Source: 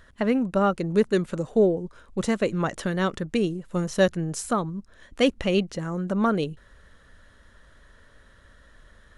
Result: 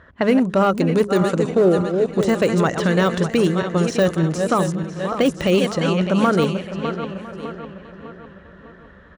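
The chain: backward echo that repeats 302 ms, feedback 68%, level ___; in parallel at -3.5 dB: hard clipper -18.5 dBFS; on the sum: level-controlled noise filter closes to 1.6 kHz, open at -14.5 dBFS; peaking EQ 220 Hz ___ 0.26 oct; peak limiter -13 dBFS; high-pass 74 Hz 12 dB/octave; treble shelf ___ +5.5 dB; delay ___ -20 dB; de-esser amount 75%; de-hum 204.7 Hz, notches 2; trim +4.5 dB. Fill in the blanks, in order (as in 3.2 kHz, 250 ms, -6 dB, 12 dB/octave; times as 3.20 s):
-10 dB, -3.5 dB, 5.1 kHz, 1004 ms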